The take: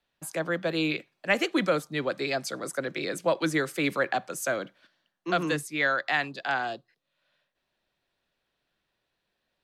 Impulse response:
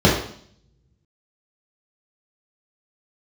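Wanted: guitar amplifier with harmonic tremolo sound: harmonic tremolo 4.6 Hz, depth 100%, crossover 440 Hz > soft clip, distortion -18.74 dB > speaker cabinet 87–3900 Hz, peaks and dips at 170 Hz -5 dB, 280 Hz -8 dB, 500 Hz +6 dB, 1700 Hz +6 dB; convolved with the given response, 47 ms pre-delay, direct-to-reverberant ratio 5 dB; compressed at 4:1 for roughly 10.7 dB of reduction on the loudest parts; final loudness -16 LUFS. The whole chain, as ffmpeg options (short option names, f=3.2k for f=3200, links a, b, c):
-filter_complex "[0:a]acompressor=threshold=-33dB:ratio=4,asplit=2[a][b];[1:a]atrim=start_sample=2205,adelay=47[c];[b][c]afir=irnorm=-1:irlink=0,volume=-28.5dB[d];[a][d]amix=inputs=2:normalize=0,acrossover=split=440[e][f];[e]aeval=exprs='val(0)*(1-1/2+1/2*cos(2*PI*4.6*n/s))':c=same[g];[f]aeval=exprs='val(0)*(1-1/2-1/2*cos(2*PI*4.6*n/s))':c=same[h];[g][h]amix=inputs=2:normalize=0,asoftclip=threshold=-29.5dB,highpass=87,equalizer=f=170:t=q:w=4:g=-5,equalizer=f=280:t=q:w=4:g=-8,equalizer=f=500:t=q:w=4:g=6,equalizer=f=1.7k:t=q:w=4:g=6,lowpass=f=3.9k:w=0.5412,lowpass=f=3.9k:w=1.3066,volume=23dB"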